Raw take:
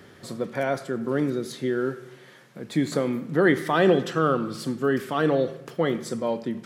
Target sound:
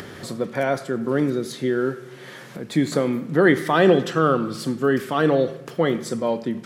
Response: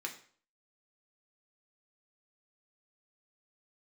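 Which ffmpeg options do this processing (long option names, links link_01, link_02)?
-af "acompressor=mode=upward:threshold=-33dB:ratio=2.5,volume=3.5dB"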